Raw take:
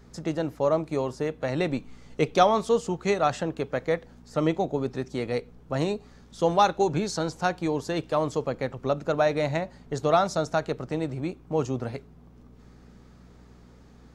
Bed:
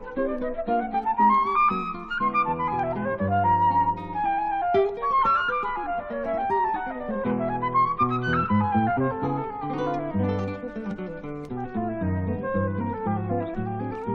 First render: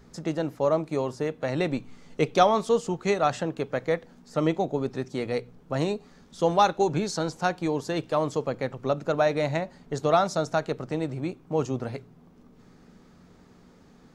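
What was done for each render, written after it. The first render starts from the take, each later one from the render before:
hum removal 60 Hz, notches 2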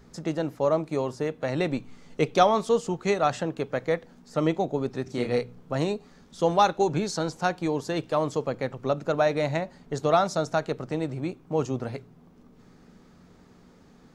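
0:05.03–0:05.74: double-tracking delay 33 ms −3 dB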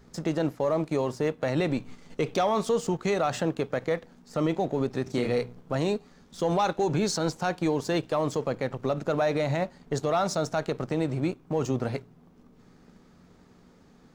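leveller curve on the samples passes 1
brickwall limiter −17 dBFS, peak gain reduction 11 dB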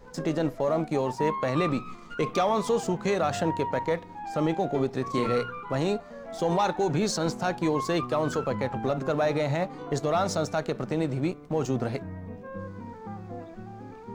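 mix in bed −12.5 dB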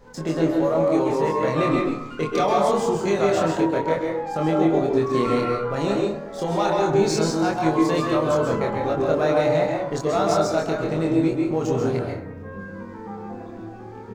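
double-tracking delay 25 ms −2.5 dB
dense smooth reverb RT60 0.74 s, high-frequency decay 0.45×, pre-delay 120 ms, DRR 0 dB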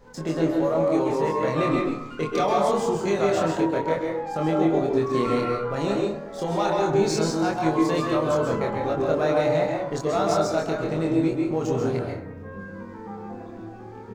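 level −2 dB

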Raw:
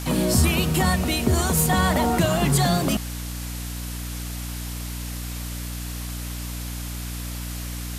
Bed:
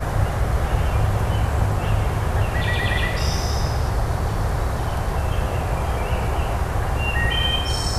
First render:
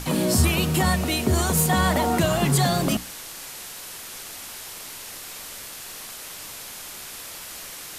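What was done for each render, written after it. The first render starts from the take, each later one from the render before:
mains-hum notches 60/120/180/240/300 Hz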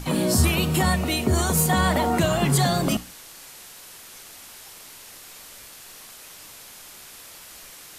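noise reduction from a noise print 6 dB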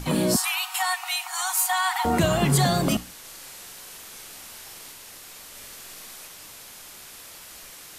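0:00.36–0:02.05: linear-phase brick-wall high-pass 710 Hz
0:03.20–0:04.92: double-tracking delay 43 ms −4 dB
0:05.48–0:06.27: flutter between parallel walls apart 11.7 metres, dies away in 0.9 s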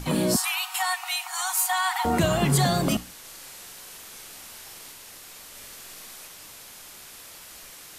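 level −1 dB

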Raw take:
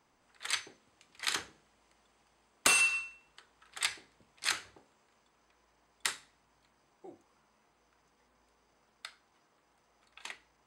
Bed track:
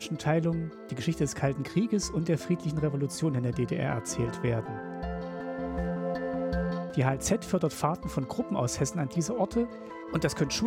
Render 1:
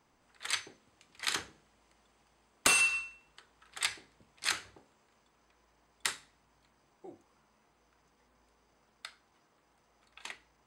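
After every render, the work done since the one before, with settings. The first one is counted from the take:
low-shelf EQ 250 Hz +4 dB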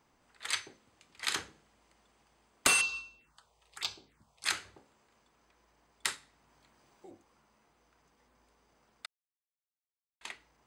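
0:02.81–0:04.46: phaser swept by the level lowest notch 200 Hz, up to 1,900 Hz, full sweep at −37.5 dBFS
0:06.15–0:07.11: multiband upward and downward compressor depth 40%
0:09.06–0:10.21: silence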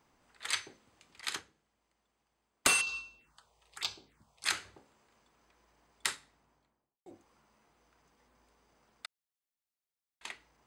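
0:01.21–0:02.87: expander for the loud parts, over −46 dBFS
0:06.10–0:07.06: fade out and dull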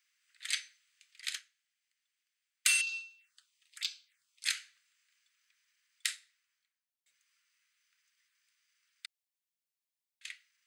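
inverse Chebyshev high-pass filter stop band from 890 Hz, stop band 40 dB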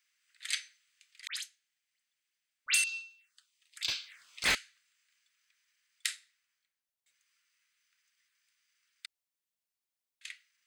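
0:01.27–0:02.84: all-pass dispersion highs, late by 88 ms, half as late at 2,400 Hz
0:03.88–0:04.55: mid-hump overdrive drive 33 dB, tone 1,600 Hz, clips at −13 dBFS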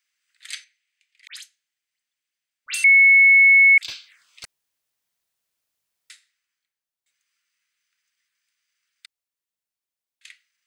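0:00.64–0:01.31: Chebyshev high-pass with heavy ripple 590 Hz, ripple 9 dB
0:02.84–0:03.78: beep over 2,200 Hz −9 dBFS
0:04.45–0:06.10: fill with room tone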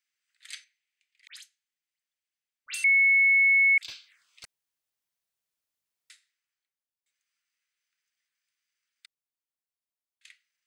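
level −8 dB

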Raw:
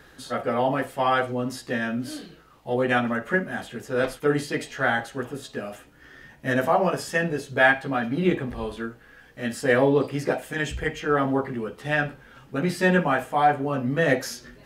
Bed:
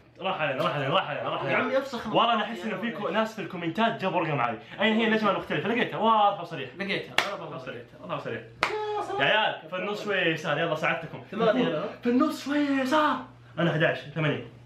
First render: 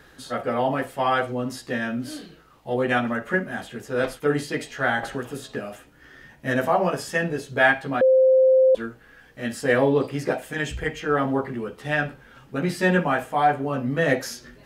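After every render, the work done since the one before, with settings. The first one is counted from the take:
0:05.03–0:05.59: multiband upward and downward compressor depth 100%
0:08.01–0:08.75: beep over 522 Hz −12.5 dBFS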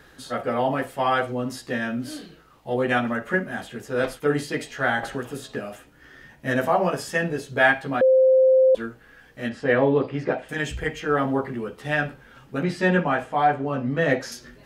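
0:09.49–0:10.49: low-pass filter 3,100 Hz
0:12.63–0:14.32: high-frequency loss of the air 64 metres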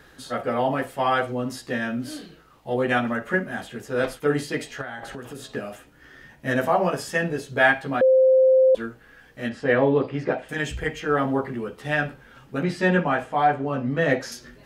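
0:04.81–0:05.47: downward compressor 5 to 1, threshold −32 dBFS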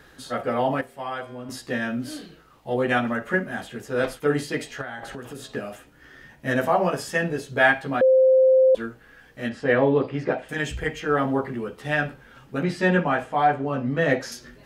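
0:00.81–0:01.49: tuned comb filter 79 Hz, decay 1.8 s, mix 70%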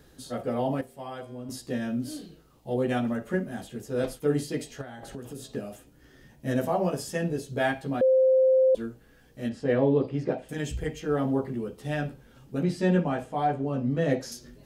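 parametric band 1,600 Hz −13 dB 2.3 octaves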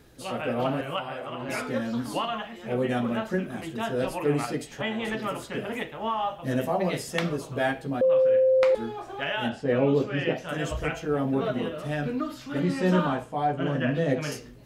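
mix in bed −7 dB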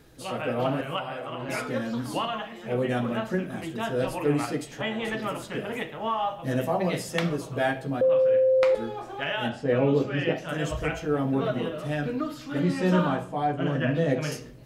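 rectangular room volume 2,100 cubic metres, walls furnished, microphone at 0.6 metres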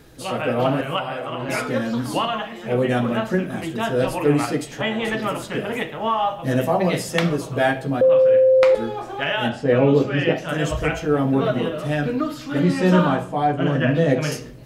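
level +6.5 dB

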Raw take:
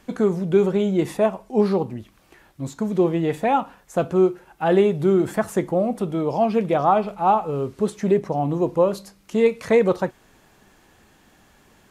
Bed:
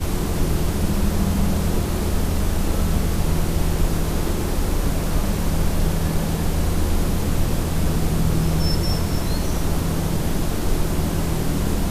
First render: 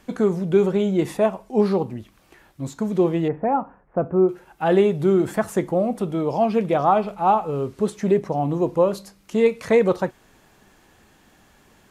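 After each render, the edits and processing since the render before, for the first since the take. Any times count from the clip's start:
0:03.28–0:04.29: Gaussian smoothing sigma 5.6 samples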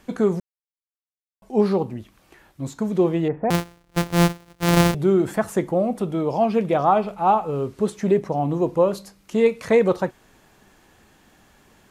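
0:00.40–0:01.42: silence
0:03.50–0:04.95: samples sorted by size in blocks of 256 samples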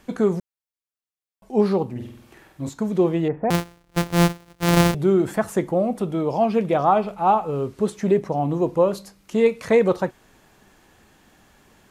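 0:01.91–0:02.69: flutter between parallel walls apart 8.3 metres, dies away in 0.7 s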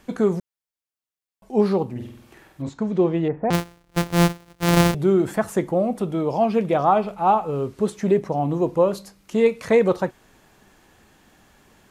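0:02.62–0:03.53: high-frequency loss of the air 100 metres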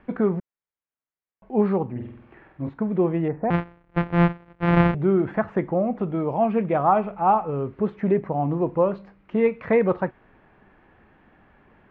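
low-pass filter 2,300 Hz 24 dB per octave
dynamic equaliser 440 Hz, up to −3 dB, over −26 dBFS, Q 1.1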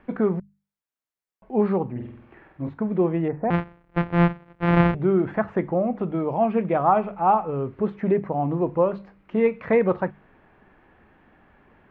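mains-hum notches 50/100/150/200 Hz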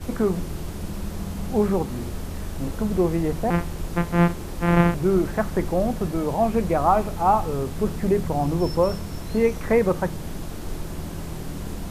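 mix in bed −10.5 dB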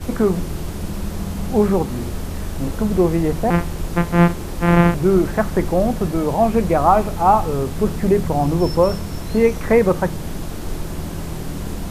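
level +5 dB
brickwall limiter −2 dBFS, peak gain reduction 1.5 dB

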